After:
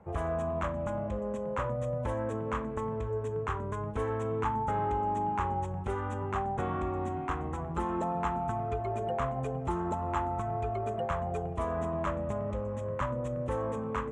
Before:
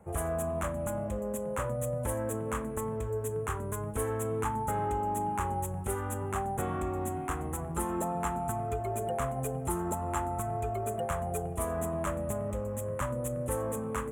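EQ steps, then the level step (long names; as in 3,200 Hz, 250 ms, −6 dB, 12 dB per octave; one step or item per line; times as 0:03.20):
low-pass filter 5,200 Hz 24 dB per octave
parametric band 1,000 Hz +4 dB 0.38 octaves
0.0 dB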